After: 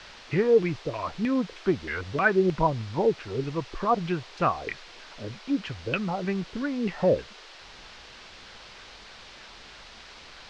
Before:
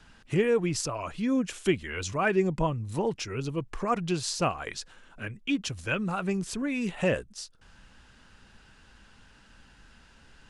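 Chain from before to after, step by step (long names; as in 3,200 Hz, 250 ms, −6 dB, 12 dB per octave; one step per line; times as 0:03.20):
auto-filter low-pass saw down 3.2 Hz 350–2,600 Hz
noise in a band 340–4,900 Hz −48 dBFS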